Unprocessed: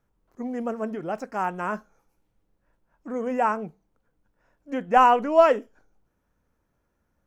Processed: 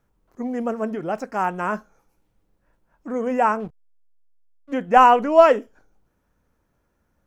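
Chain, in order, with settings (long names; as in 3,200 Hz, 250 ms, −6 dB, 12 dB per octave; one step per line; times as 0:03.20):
0:03.60–0:04.73: slack as between gear wheels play −38.5 dBFS
level +4 dB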